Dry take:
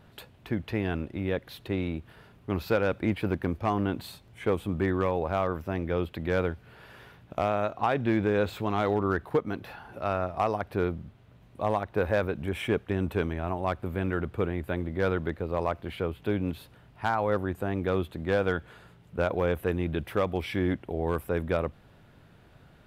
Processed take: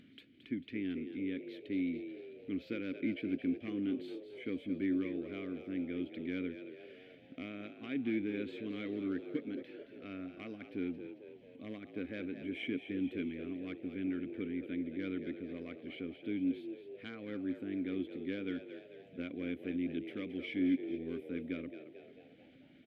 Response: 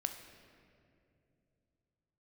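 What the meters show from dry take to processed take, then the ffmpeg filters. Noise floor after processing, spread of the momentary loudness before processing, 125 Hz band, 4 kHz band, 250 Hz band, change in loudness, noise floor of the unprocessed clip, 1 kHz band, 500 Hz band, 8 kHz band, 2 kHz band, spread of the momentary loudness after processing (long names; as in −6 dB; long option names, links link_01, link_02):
−59 dBFS, 8 LU, −18.5 dB, −9.0 dB, −4.0 dB, −10.0 dB, −56 dBFS, −28.0 dB, −15.0 dB, can't be measured, −12.0 dB, 12 LU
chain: -filter_complex "[0:a]asplit=3[link_01][link_02][link_03];[link_01]bandpass=frequency=270:width_type=q:width=8,volume=0dB[link_04];[link_02]bandpass=frequency=2290:width_type=q:width=8,volume=-6dB[link_05];[link_03]bandpass=frequency=3010:width_type=q:width=8,volume=-9dB[link_06];[link_04][link_05][link_06]amix=inputs=3:normalize=0,acompressor=mode=upward:threshold=-55dB:ratio=2.5,asplit=7[link_07][link_08][link_09][link_10][link_11][link_12][link_13];[link_08]adelay=222,afreqshift=62,volume=-10.5dB[link_14];[link_09]adelay=444,afreqshift=124,volume=-16.2dB[link_15];[link_10]adelay=666,afreqshift=186,volume=-21.9dB[link_16];[link_11]adelay=888,afreqshift=248,volume=-27.5dB[link_17];[link_12]adelay=1110,afreqshift=310,volume=-33.2dB[link_18];[link_13]adelay=1332,afreqshift=372,volume=-38.9dB[link_19];[link_07][link_14][link_15][link_16][link_17][link_18][link_19]amix=inputs=7:normalize=0,volume=2dB"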